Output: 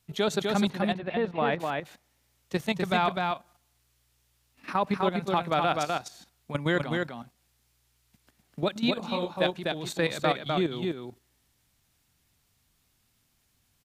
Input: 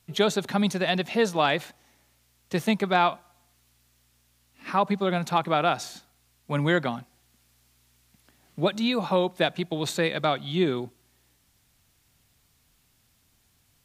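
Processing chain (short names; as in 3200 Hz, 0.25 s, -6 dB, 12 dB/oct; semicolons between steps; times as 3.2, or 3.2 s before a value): 2.63–3.06 resonant low shelf 180 Hz +8 dB, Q 3; level quantiser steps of 12 dB; 0.68–1.6 air absorption 450 m; echo 0.252 s -3.5 dB; 8.94–9.42 detuned doubles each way 47 cents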